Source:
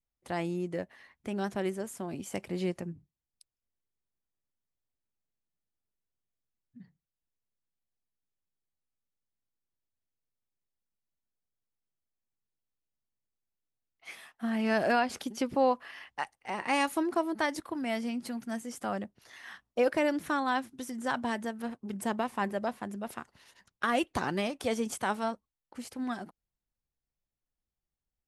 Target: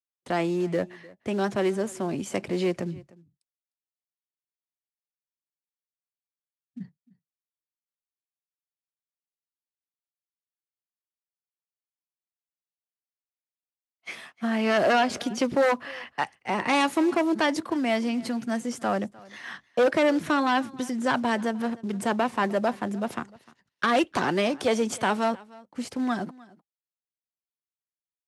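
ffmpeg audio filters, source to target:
ffmpeg -i in.wav -filter_complex "[0:a]agate=range=-33dB:threshold=-49dB:ratio=3:detection=peak,lowshelf=frequency=280:gain=10,bandreject=frequency=810:width=25,acrossover=split=320|1000[link_01][link_02][link_03];[link_01]alimiter=level_in=12.5dB:limit=-24dB:level=0:latency=1,volume=-12.5dB[link_04];[link_02]acrusher=bits=5:mode=log:mix=0:aa=0.000001[link_05];[link_04][link_05][link_03]amix=inputs=3:normalize=0,aeval=exprs='0.158*sin(PI/2*1.58*val(0)/0.158)':channel_layout=same,highpass=130,lowpass=7900,aecho=1:1:303:0.075" out.wav

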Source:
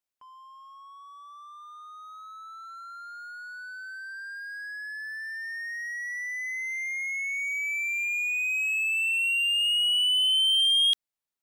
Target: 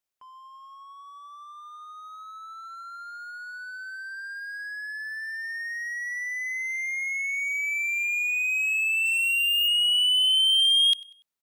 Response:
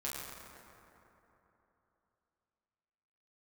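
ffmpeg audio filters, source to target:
-filter_complex "[0:a]bandreject=frequency=60:width_type=h:width=6,bandreject=frequency=120:width_type=h:width=6,bandreject=frequency=180:width_type=h:width=6,bandreject=frequency=240:width_type=h:width=6,bandreject=frequency=300:width_type=h:width=6,asettb=1/sr,asplit=3[link_01][link_02][link_03];[link_01]atrim=end=9.054[link_04];[link_02]atrim=start=9.05:end=9.68,asetpts=PTS-STARTPTS,afade=type=in:duration=0.004:curve=qsin,afade=type=out:start_time=0.626:duration=0.004:curve=qsin,aeval=exprs='0.0944*(cos(1*acos(clip(val(0)/0.0944,-1,1)))-cos(1*PI/2))+0.000841*(cos(4*acos(clip(val(0)/0.0944,-1,1)))-cos(4*PI/2))+0.0188*(cos(5*acos(clip(val(0)/0.0944,-1,1)))-cos(5*PI/2))':channel_layout=same[link_05];[link_03]atrim=start=9.676[link_06];[link_04][link_05]acrossfade=duration=0.004:curve1=hsin:curve2=qsin[link_07];[link_07][link_06]acrossfade=duration=0.004:curve1=qsin:curve2=hsin,asplit=2[link_08][link_09];[link_09]aecho=0:1:96|192|288:0.0794|0.031|0.0121[link_10];[link_08][link_10]amix=inputs=2:normalize=0,volume=2dB"

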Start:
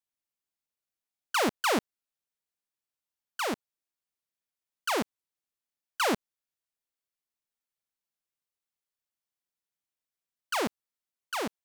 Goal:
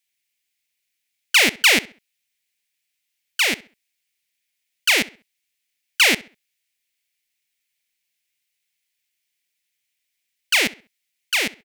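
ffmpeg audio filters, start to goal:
ffmpeg -i in.wav -filter_complex "[0:a]highshelf=frequency=1600:width_type=q:width=3:gain=10.5,asplit=2[link_01][link_02];[link_02]adelay=66,lowpass=frequency=4100:poles=1,volume=-19dB,asplit=2[link_03][link_04];[link_04]adelay=66,lowpass=frequency=4100:poles=1,volume=0.33,asplit=2[link_05][link_06];[link_06]adelay=66,lowpass=frequency=4100:poles=1,volume=0.33[link_07];[link_01][link_03][link_05][link_07]amix=inputs=4:normalize=0,volume=3.5dB" out.wav

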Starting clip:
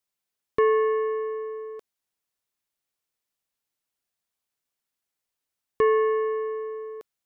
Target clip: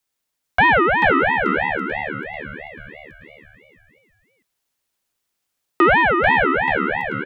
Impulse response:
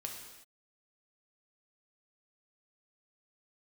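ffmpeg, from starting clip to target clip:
-filter_complex "[0:a]acontrast=70,asplit=7[link_01][link_02][link_03][link_04][link_05][link_06][link_07];[link_02]adelay=438,afreqshift=74,volume=-3.5dB[link_08];[link_03]adelay=876,afreqshift=148,volume=-9.9dB[link_09];[link_04]adelay=1314,afreqshift=222,volume=-16.3dB[link_10];[link_05]adelay=1752,afreqshift=296,volume=-22.6dB[link_11];[link_06]adelay=2190,afreqshift=370,volume=-29dB[link_12];[link_07]adelay=2628,afreqshift=444,volume=-35.4dB[link_13];[link_01][link_08][link_09][link_10][link_11][link_12][link_13]amix=inputs=7:normalize=0,aeval=exprs='val(0)*sin(2*PI*1100*n/s+1100*0.3/3*sin(2*PI*3*n/s))':channel_layout=same,volume=3dB"

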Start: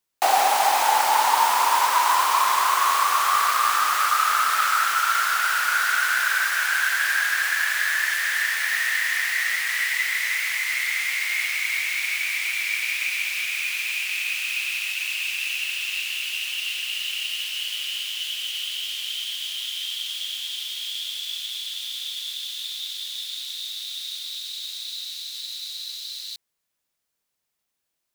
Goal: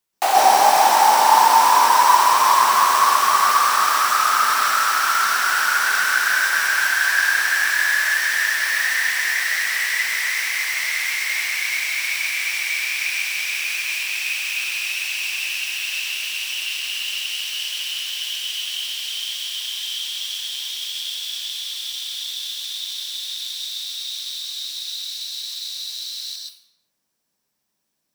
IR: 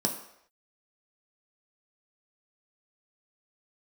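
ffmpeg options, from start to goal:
-filter_complex "[0:a]acontrast=20,asplit=2[link_01][link_02];[1:a]atrim=start_sample=2205,adelay=129[link_03];[link_02][link_03]afir=irnorm=-1:irlink=0,volume=-6dB[link_04];[link_01][link_04]amix=inputs=2:normalize=0,volume=-4dB"

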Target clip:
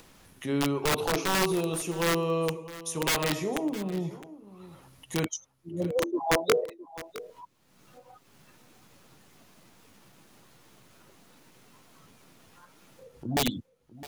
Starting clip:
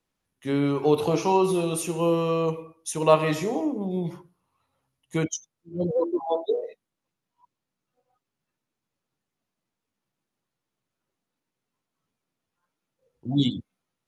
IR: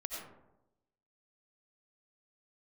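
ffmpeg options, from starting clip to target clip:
-filter_complex "[0:a]acompressor=mode=upward:threshold=-29dB:ratio=2.5,aeval=exprs='(mod(6.31*val(0)+1,2)-1)/6.31':channel_layout=same,asettb=1/sr,asplit=3[link_01][link_02][link_03];[link_01]atrim=end=6.174[link_04];[link_02]atrim=start=6.17:end=6.64,asetpts=PTS-STARTPTS,afade=type=in:duration=0.004:curve=qsin,afade=type=out:start_time=0.466:duration=0.004:curve=qsin,acontrast=26[link_05];[link_03]atrim=start=6.636[link_06];[link_04][link_05]acrossfade=duration=0.004:curve1=hsin:curve2=qsin[link_07];[link_07][link_06]acrossfade=duration=0.004:curve1=qsin:curve2=hsin,aecho=1:1:662:0.141,volume=-3.5dB"

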